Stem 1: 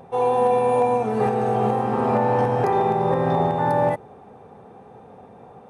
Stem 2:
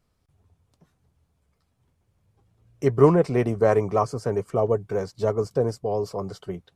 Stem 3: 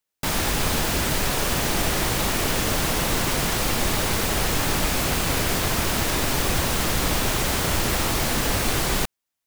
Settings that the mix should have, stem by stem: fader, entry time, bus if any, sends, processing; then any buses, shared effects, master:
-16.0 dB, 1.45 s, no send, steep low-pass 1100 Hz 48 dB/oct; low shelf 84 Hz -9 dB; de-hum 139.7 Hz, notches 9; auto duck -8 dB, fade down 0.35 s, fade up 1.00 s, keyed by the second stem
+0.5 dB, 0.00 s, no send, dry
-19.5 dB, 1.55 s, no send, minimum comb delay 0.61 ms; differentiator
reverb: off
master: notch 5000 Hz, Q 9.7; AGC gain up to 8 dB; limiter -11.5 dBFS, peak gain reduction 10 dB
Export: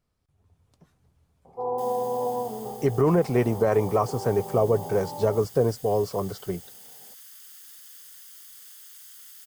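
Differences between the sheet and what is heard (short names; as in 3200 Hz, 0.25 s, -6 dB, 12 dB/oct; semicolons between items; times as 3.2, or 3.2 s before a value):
stem 2 +0.5 dB -> -6.0 dB; stem 3 -19.5 dB -> -28.0 dB; master: missing notch 5000 Hz, Q 9.7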